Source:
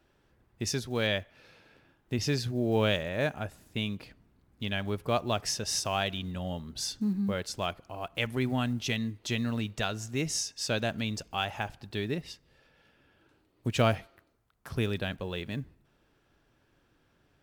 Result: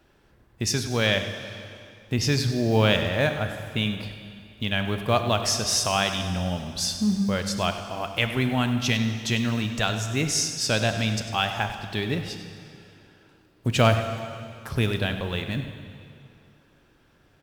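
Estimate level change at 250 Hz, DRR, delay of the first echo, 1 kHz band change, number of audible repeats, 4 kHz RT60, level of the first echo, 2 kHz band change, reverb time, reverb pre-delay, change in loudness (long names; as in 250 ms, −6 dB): +6.0 dB, 6.5 dB, 99 ms, +7.0 dB, 1, 2.2 s, −13.5 dB, +7.5 dB, 2.4 s, 15 ms, +7.0 dB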